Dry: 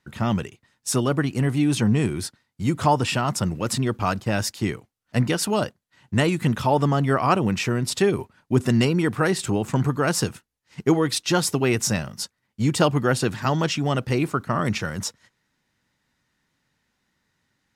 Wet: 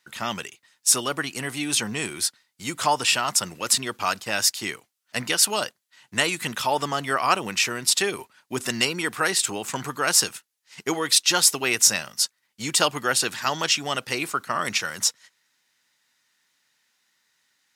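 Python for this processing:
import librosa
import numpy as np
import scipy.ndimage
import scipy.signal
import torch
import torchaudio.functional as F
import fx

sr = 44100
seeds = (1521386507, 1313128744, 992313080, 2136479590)

y = fx.highpass(x, sr, hz=980.0, slope=6)
y = fx.high_shelf(y, sr, hz=2300.0, db=8.5)
y = F.gain(torch.from_numpy(y), 1.0).numpy()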